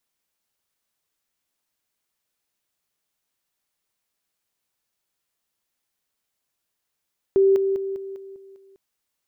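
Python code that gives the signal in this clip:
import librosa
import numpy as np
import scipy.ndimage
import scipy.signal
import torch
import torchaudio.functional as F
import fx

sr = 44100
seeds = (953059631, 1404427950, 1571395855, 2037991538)

y = fx.level_ladder(sr, hz=389.0, from_db=-13.0, step_db=-6.0, steps=7, dwell_s=0.2, gap_s=0.0)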